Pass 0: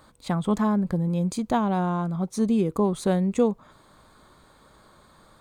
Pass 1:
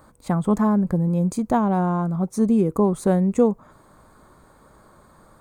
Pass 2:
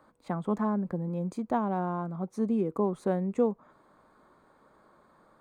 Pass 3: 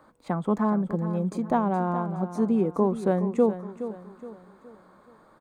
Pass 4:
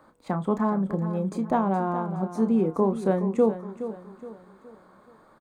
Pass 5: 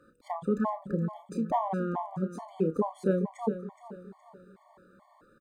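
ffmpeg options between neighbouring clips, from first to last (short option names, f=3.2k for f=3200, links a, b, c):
-af "equalizer=f=3.5k:w=0.99:g=-12.5,volume=4dB"
-filter_complex "[0:a]acrossover=split=180 4300:gain=0.224 1 0.224[a][b][c];[a][b][c]amix=inputs=3:normalize=0,volume=-7.5dB"
-af "aecho=1:1:419|838|1257|1676:0.251|0.1|0.0402|0.0161,volume=4.5dB"
-filter_complex "[0:a]asplit=2[a][b];[b]adelay=31,volume=-10.5dB[c];[a][c]amix=inputs=2:normalize=0"
-af "afftfilt=real='re*gt(sin(2*PI*2.3*pts/sr)*(1-2*mod(floor(b*sr/1024/590),2)),0)':imag='im*gt(sin(2*PI*2.3*pts/sr)*(1-2*mod(floor(b*sr/1024/590),2)),0)':win_size=1024:overlap=0.75,volume=-2dB"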